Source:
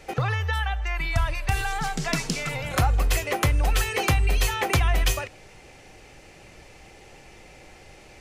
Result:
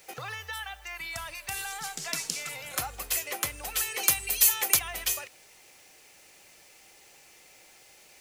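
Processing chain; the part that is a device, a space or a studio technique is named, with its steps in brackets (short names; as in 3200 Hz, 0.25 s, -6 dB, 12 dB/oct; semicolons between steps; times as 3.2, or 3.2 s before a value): 4.03–4.79 high shelf 5200 Hz +11 dB; turntable without a phono preamp (RIAA curve recording; white noise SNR 29 dB); gain -10 dB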